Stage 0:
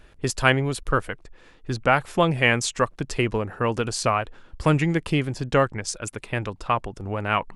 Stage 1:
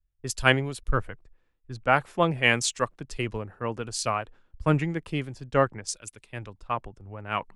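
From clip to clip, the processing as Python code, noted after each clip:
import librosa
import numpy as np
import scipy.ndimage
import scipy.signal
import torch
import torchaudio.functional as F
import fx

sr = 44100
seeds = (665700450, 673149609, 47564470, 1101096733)

y = fx.band_widen(x, sr, depth_pct=100)
y = y * librosa.db_to_amplitude(-6.0)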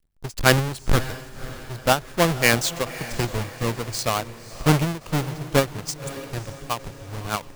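y = fx.halfwave_hold(x, sr)
y = fx.echo_diffused(y, sr, ms=556, feedback_pct=51, wet_db=-15.0)
y = fx.end_taper(y, sr, db_per_s=250.0)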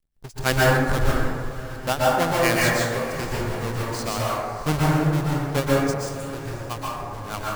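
y = fx.rev_plate(x, sr, seeds[0], rt60_s=1.7, hf_ratio=0.3, predelay_ms=110, drr_db=-6.0)
y = y * librosa.db_to_amplitude(-6.5)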